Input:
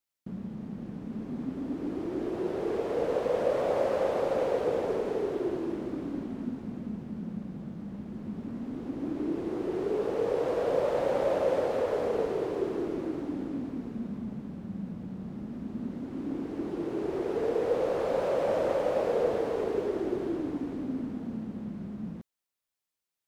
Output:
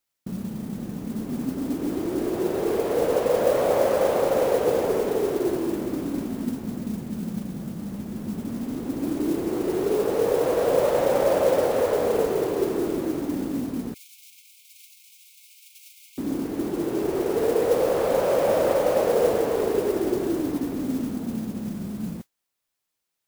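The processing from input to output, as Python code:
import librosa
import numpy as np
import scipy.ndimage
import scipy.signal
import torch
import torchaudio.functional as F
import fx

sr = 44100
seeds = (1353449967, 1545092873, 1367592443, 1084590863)

y = fx.mod_noise(x, sr, seeds[0], snr_db=20)
y = fx.brickwall_highpass(y, sr, low_hz=2100.0, at=(13.94, 16.18))
y = y * 10.0 ** (6.5 / 20.0)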